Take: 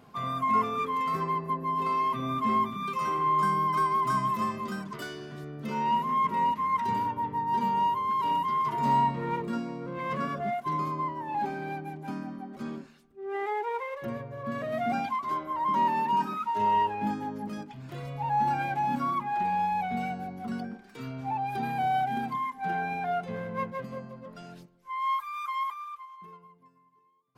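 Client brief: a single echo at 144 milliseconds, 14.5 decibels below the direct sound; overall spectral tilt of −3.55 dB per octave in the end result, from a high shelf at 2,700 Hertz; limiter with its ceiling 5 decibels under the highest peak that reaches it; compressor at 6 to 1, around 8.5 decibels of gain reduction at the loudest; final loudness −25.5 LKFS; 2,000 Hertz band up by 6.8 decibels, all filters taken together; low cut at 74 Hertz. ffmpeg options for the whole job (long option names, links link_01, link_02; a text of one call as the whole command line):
ffmpeg -i in.wav -af "highpass=74,equalizer=frequency=2000:width_type=o:gain=5.5,highshelf=frequency=2700:gain=7,acompressor=threshold=-29dB:ratio=6,alimiter=level_in=2.5dB:limit=-24dB:level=0:latency=1,volume=-2.5dB,aecho=1:1:144:0.188,volume=8.5dB" out.wav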